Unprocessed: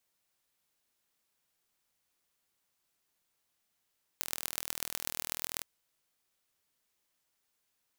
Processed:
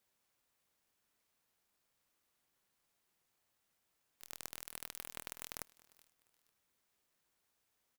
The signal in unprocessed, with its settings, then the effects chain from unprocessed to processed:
pulse train 40.5 per s, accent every 5, -4.5 dBFS 1.42 s
one-sided clip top -19 dBFS; feedback delay 449 ms, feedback 31%, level -21 dB; sampling jitter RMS 0.071 ms

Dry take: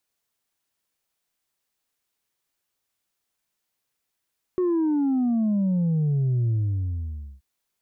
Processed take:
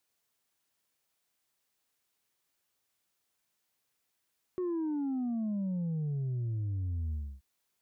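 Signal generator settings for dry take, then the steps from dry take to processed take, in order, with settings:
sub drop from 370 Hz, over 2.83 s, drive 2 dB, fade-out 0.91 s, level -20 dB
high-pass 47 Hz 6 dB/octave; peak limiter -30.5 dBFS

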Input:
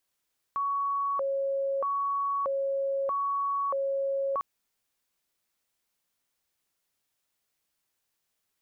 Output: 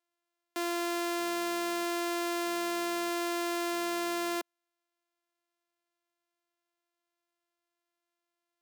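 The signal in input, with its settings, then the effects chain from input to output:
siren hi-lo 548–1120 Hz 0.79 per s sine -26 dBFS 3.85 s
sorted samples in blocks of 128 samples; Bessel high-pass 440 Hz, order 6; upward expansion 1.5:1, over -43 dBFS

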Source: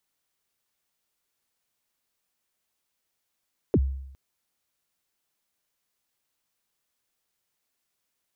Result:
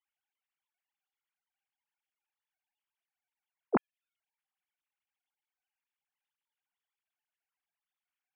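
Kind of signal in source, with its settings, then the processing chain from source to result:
kick drum length 0.41 s, from 500 Hz, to 67 Hz, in 49 ms, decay 0.79 s, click off, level -15 dB
formants replaced by sine waves; bass shelf 450 Hz -11 dB

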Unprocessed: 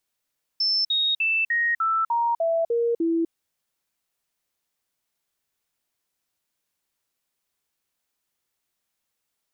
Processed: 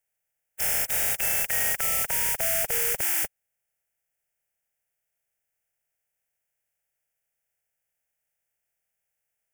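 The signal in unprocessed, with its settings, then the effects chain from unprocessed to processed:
stepped sine 5.3 kHz down, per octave 2, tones 9, 0.25 s, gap 0.05 s -19.5 dBFS
spectral contrast reduction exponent 0.16; static phaser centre 1.1 kHz, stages 6

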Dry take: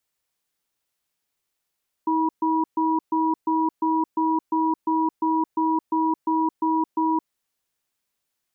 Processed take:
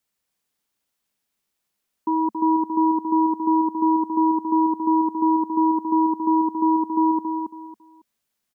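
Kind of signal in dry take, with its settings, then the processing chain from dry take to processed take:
cadence 319 Hz, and 968 Hz, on 0.22 s, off 0.13 s, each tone -21.5 dBFS 5.16 s
peaking EQ 220 Hz +7 dB 0.49 oct; feedback delay 276 ms, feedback 26%, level -6 dB

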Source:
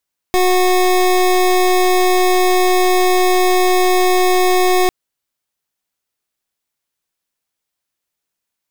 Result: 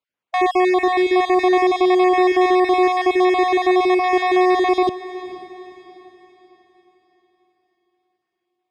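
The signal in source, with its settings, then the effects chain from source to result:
pulse 366 Hz, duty 25% -12.5 dBFS 4.55 s
random holes in the spectrogram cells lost 33%; band-pass 120–2600 Hz; echo that smears into a reverb 478 ms, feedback 44%, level -15 dB

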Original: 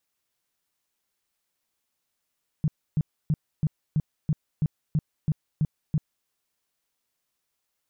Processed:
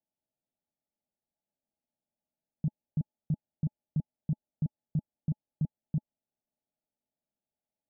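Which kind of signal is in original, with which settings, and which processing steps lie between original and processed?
tone bursts 153 Hz, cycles 6, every 0.33 s, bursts 11, -19 dBFS
rippled Chebyshev low-pass 880 Hz, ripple 9 dB

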